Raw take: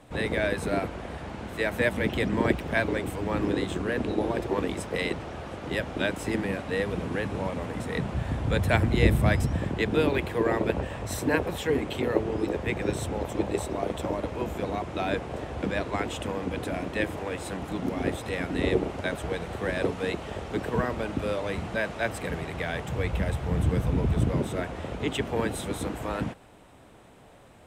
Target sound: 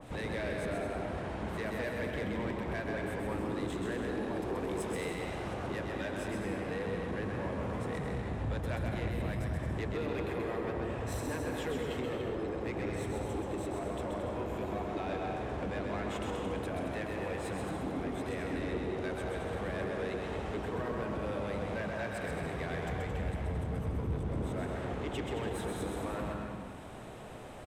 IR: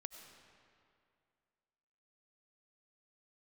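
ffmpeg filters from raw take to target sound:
-filter_complex "[0:a]acompressor=threshold=0.00891:ratio=2.5[s0];[1:a]atrim=start_sample=2205,afade=t=out:st=0.26:d=0.01,atrim=end_sample=11907,asetrate=25578,aresample=44100[s1];[s0][s1]afir=irnorm=-1:irlink=0,asoftclip=type=tanh:threshold=0.0133,asettb=1/sr,asplit=3[s2][s3][s4];[s2]atrim=end=3.384[s5];[s3]atrim=start=3.38:end=5.54,asetpts=PTS-STARTPTS,afade=t=in:d=0.004:c=qsin,afade=t=out:st=2.156:d=0.004:c=qsin,highshelf=f=6800:g=9[s6];[s4]atrim=start=5.536[s7];[s5][s6]acrossfade=d=0.004:c1=hsin:c2=qsin[s8];[s8][s7]acrossfade=d=0.004:c1=qsin:c2=hsin,aecho=1:1:130|221|284.7|329.3|360.5:0.631|0.398|0.251|0.158|0.1,adynamicequalizer=threshold=0.00112:dfrequency=2200:dqfactor=0.7:tfrequency=2200:tqfactor=0.7:attack=5:release=100:ratio=0.375:range=2.5:mode=cutabove:tftype=highshelf,volume=2"

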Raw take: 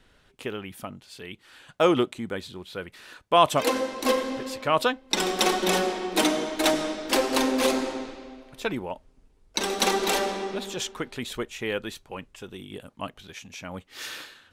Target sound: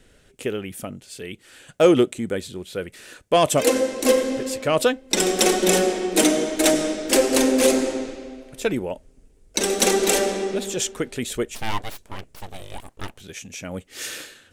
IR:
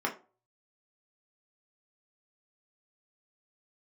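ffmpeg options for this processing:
-filter_complex "[0:a]acontrast=70,equalizer=f=500:t=o:w=1:g=4,equalizer=f=1000:t=o:w=1:g=-10,equalizer=f=4000:t=o:w=1:g=-5,equalizer=f=8000:t=o:w=1:g=7,asplit=3[s0][s1][s2];[s0]afade=t=out:st=11.54:d=0.02[s3];[s1]aeval=exprs='abs(val(0))':c=same,afade=t=in:st=11.54:d=0.02,afade=t=out:st=13.19:d=0.02[s4];[s2]afade=t=in:st=13.19:d=0.02[s5];[s3][s4][s5]amix=inputs=3:normalize=0,volume=0.891"

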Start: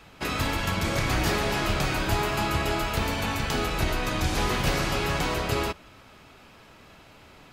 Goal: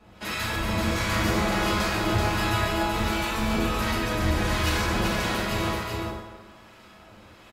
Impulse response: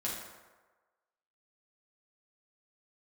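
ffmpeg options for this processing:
-filter_complex "[0:a]acrossover=split=1000[s0][s1];[s0]aeval=exprs='val(0)*(1-0.7/2+0.7/2*cos(2*PI*1.4*n/s))':c=same[s2];[s1]aeval=exprs='val(0)*(1-0.7/2-0.7/2*cos(2*PI*1.4*n/s))':c=same[s3];[s2][s3]amix=inputs=2:normalize=0,aecho=1:1:383:0.631[s4];[1:a]atrim=start_sample=2205[s5];[s4][s5]afir=irnorm=-1:irlink=0"

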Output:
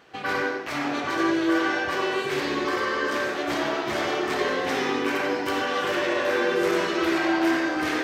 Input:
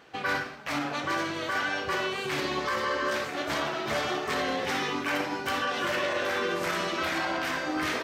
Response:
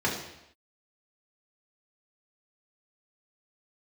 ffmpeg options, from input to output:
-filter_complex "[0:a]asplit=2[s0][s1];[s1]lowshelf=f=220:t=q:w=3:g=-12.5[s2];[1:a]atrim=start_sample=2205,adelay=89[s3];[s2][s3]afir=irnorm=-1:irlink=0,volume=0.251[s4];[s0][s4]amix=inputs=2:normalize=0"

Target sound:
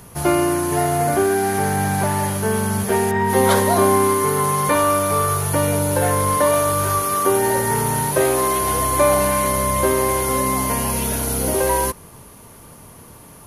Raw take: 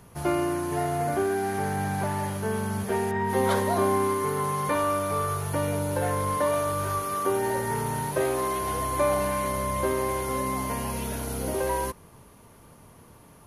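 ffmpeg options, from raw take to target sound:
-af "highshelf=f=5500:g=7.5,volume=2.51"

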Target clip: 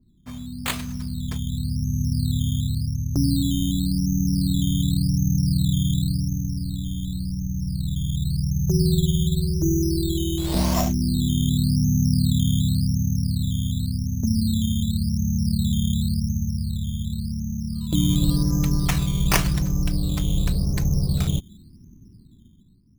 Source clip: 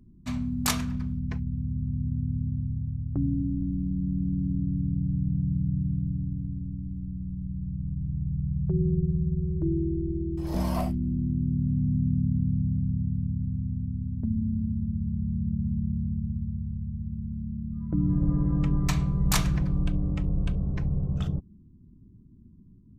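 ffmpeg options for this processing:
-af "dynaudnorm=f=170:g=11:m=3.98,acrusher=samples=10:mix=1:aa=0.000001:lfo=1:lforange=6:lforate=0.9,adynamicequalizer=threshold=0.00562:dfrequency=2300:dqfactor=0.7:tfrequency=2300:tqfactor=0.7:attack=5:release=100:ratio=0.375:range=4:mode=boostabove:tftype=highshelf,volume=0.531"

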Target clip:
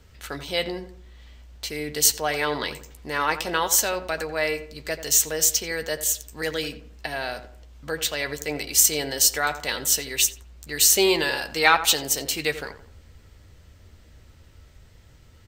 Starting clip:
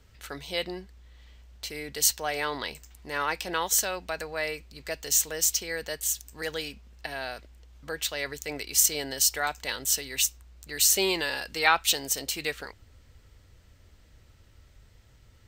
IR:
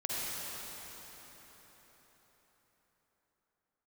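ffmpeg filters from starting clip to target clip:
-filter_complex "[0:a]equalizer=f=240:t=o:w=2.8:g=2,asplit=2[s0][s1];[s1]volume=4.73,asoftclip=hard,volume=0.211,volume=0.282[s2];[s0][s2]amix=inputs=2:normalize=0,asplit=2[s3][s4];[s4]adelay=13,volume=0.282[s5];[s3][s5]amix=inputs=2:normalize=0,asplit=2[s6][s7];[s7]adelay=87,lowpass=f=1600:p=1,volume=0.282,asplit=2[s8][s9];[s9]adelay=87,lowpass=f=1600:p=1,volume=0.41,asplit=2[s10][s11];[s11]adelay=87,lowpass=f=1600:p=1,volume=0.41,asplit=2[s12][s13];[s13]adelay=87,lowpass=f=1600:p=1,volume=0.41[s14];[s6][s8][s10][s12][s14]amix=inputs=5:normalize=0,volume=1.26"

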